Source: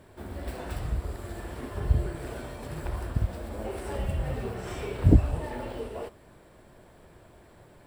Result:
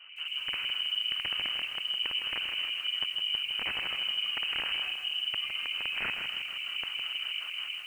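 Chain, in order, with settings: bass shelf 420 Hz +11.5 dB; hum notches 50/100/150/200/250/300/350/400/450 Hz; level rider gain up to 13 dB; peak limiter -10.5 dBFS, peak gain reduction 9.5 dB; reverse; compression 10:1, threshold -26 dBFS, peak gain reduction 13 dB; reverse; vibrato 0.8 Hz 24 cents; LFO low-pass square 5.4 Hz 730–1800 Hz; integer overflow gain 20.5 dB; on a send: reverse echo 77 ms -20 dB; on the sum: algorithmic reverb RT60 0.64 s, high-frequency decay 0.7×, pre-delay 85 ms, DRR 12 dB; frequency inversion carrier 3 kHz; bit-crushed delay 159 ms, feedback 55%, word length 8-bit, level -7 dB; trim -6 dB

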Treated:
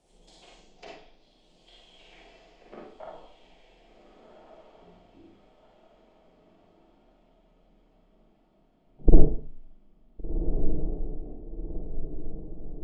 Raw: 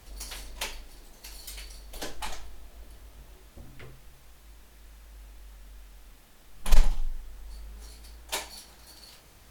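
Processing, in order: low-pass that closes with the level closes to 1.2 kHz, closed at -26 dBFS; graphic EQ 250/500/1000/2000/4000 Hz +6/+8/+12/-9/+4 dB; Chebyshev shaper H 3 -10 dB, 5 -43 dB, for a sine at -2.5 dBFS; in parallel at -10.5 dB: bit crusher 5-bit; on the sum: low-pass sweep 12 kHz -> 330 Hz, 0.24–4.04 s; on a send: echo that smears into a reverb 1116 ms, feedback 52%, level -7 dB; on the sum: Schroeder reverb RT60 0.32 s, combs from 26 ms, DRR -2 dB; speed mistake 45 rpm record played at 33 rpm; trim +1.5 dB

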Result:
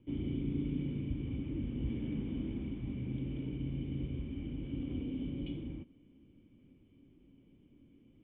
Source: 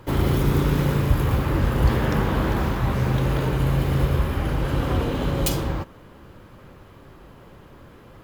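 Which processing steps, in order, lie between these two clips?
cascade formant filter i; trim -6.5 dB

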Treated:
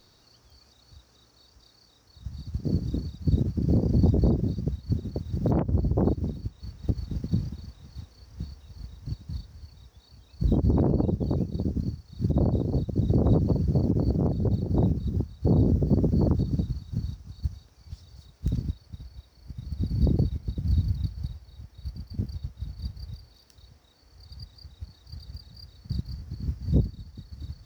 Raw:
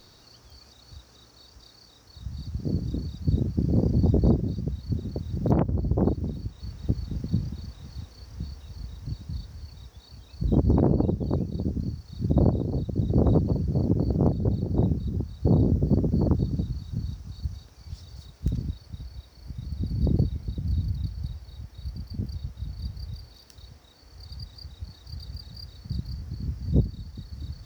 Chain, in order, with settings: peak limiter -16.5 dBFS, peak gain reduction 7.5 dB; upward expansion 1.5:1, over -41 dBFS; trim +4.5 dB

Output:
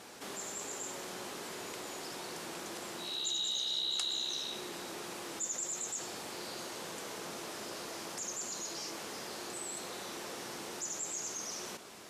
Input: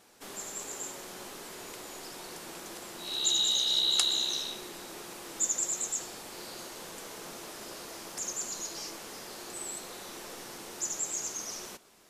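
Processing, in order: high-pass 74 Hz 12 dB/octave; treble shelf 12 kHz -10.5 dB; level flattener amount 50%; trim -8.5 dB

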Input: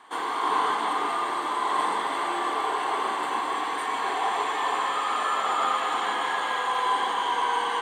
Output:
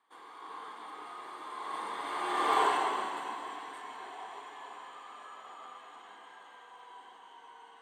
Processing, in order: Doppler pass-by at 2.60 s, 10 m/s, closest 1.7 m; trim +1 dB

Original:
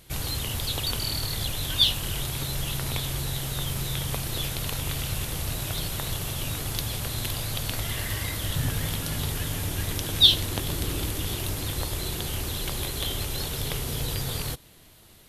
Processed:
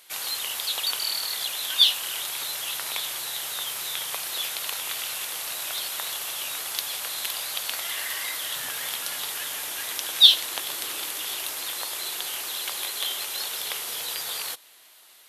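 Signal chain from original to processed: high-pass 870 Hz 12 dB/octave; trim +3 dB

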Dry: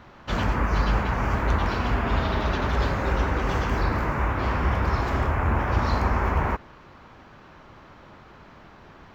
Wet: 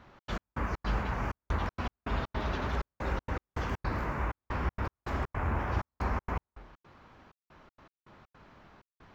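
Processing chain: flange 0.97 Hz, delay 3.6 ms, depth 8.9 ms, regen -88%; trance gate "xx.x..xx.xxxxx.." 160 bpm -60 dB; trim -3.5 dB

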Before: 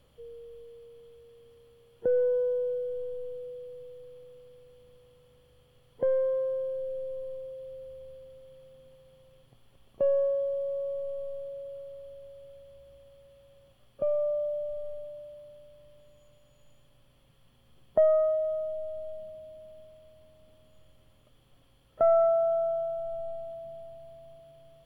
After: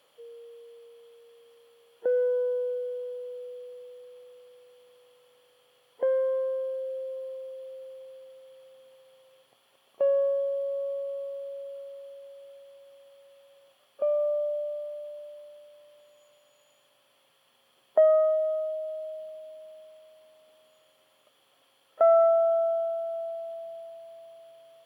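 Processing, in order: high-pass 570 Hz 12 dB/octave; trim +4.5 dB

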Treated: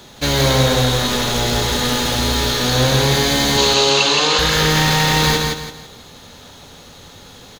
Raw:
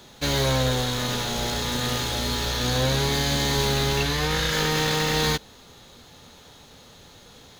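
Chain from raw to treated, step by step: 3.57–4.39 s: cabinet simulation 280–8100 Hz, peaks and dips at 540 Hz +4 dB, 1.1 kHz +6 dB, 1.9 kHz -7 dB, 2.8 kHz +7 dB, 4.3 kHz +6 dB, 6.9 kHz +5 dB; on a send: feedback delay 167 ms, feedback 33%, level -3.5 dB; on the sum: trim +6.5 dB

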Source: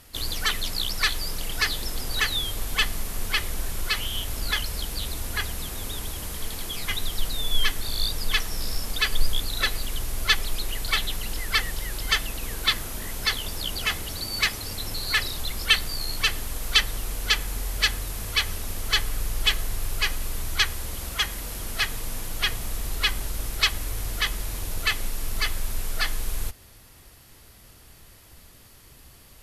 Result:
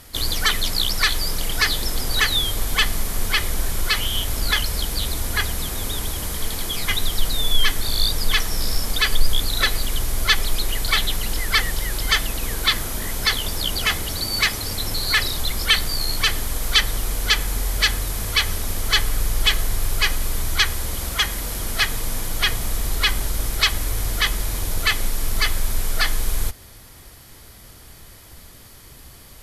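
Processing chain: in parallel at +1 dB: peak limiter -14 dBFS, peak gain reduction 11.5 dB; on the sum: band-stop 2.7 kHz, Q 14

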